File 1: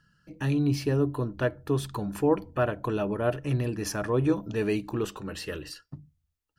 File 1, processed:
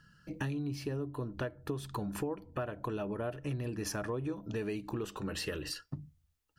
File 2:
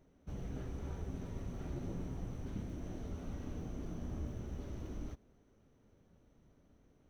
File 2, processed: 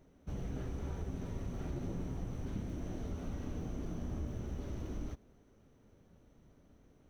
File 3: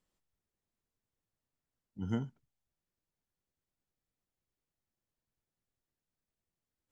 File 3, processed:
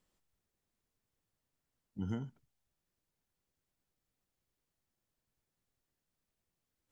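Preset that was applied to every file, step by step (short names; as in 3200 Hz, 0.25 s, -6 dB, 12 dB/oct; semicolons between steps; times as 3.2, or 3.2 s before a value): compressor 10:1, threshold -37 dBFS; gain +3.5 dB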